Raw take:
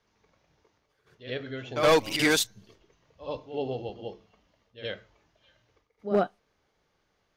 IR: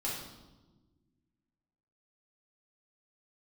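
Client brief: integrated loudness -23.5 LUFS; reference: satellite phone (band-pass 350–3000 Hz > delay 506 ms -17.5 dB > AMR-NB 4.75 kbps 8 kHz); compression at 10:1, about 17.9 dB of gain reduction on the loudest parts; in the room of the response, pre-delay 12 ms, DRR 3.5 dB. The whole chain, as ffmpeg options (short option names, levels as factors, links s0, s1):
-filter_complex "[0:a]acompressor=threshold=0.0158:ratio=10,asplit=2[s0][s1];[1:a]atrim=start_sample=2205,adelay=12[s2];[s1][s2]afir=irnorm=-1:irlink=0,volume=0.447[s3];[s0][s3]amix=inputs=2:normalize=0,highpass=350,lowpass=3000,aecho=1:1:506:0.133,volume=11.9" -ar 8000 -c:a libopencore_amrnb -b:a 4750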